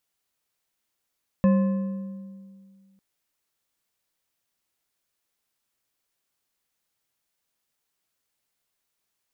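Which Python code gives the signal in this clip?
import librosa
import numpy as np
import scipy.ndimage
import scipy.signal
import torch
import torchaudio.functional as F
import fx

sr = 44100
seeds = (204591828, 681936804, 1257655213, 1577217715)

y = fx.strike_metal(sr, length_s=1.55, level_db=-14.5, body='bar', hz=194.0, decay_s=2.11, tilt_db=8.5, modes=5)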